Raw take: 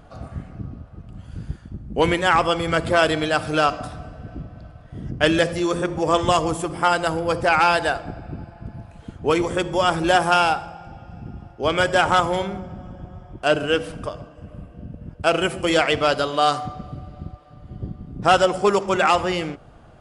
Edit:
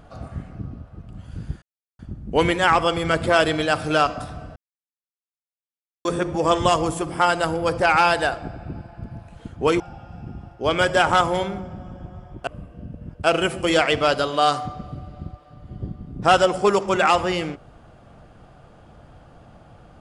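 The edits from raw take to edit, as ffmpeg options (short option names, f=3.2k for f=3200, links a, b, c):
-filter_complex "[0:a]asplit=6[a][b][c][d][e][f];[a]atrim=end=1.62,asetpts=PTS-STARTPTS,afade=t=out:st=1.616:d=0.004:c=hsin,apad=pad_dur=0.37[g];[b]atrim=start=1.62:end=4.19,asetpts=PTS-STARTPTS,afade=t=in:d=0.004:c=hsin,afade=t=out:st=2.566:d=0.004:c=hsin[h];[c]atrim=start=4.19:end=5.68,asetpts=PTS-STARTPTS,volume=0[i];[d]atrim=start=5.68:end=9.432,asetpts=PTS-STARTPTS,afade=t=in:d=0.004:c=hsin[j];[e]atrim=start=10.788:end=13.462[k];[f]atrim=start=14.468[l];[g][h][i][j]concat=n=4:v=0:a=1[m];[m][k]acrossfade=d=0.004:c1=hsin:c2=hsin[n];[n][l]acrossfade=d=0.004:c1=hsin:c2=hsin"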